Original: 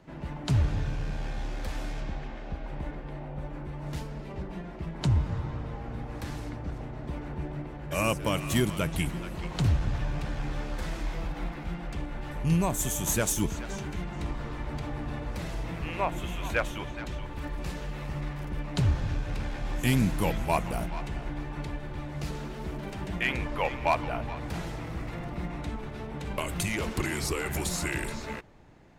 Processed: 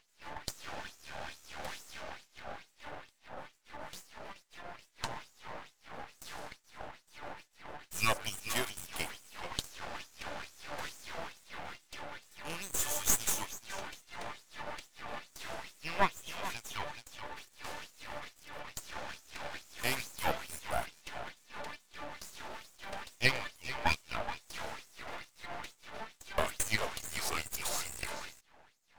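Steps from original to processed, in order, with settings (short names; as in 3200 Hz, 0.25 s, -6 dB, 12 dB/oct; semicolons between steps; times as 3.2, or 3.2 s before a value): LFO high-pass sine 2.3 Hz 600–7800 Hz; half-wave rectifier; gain +1 dB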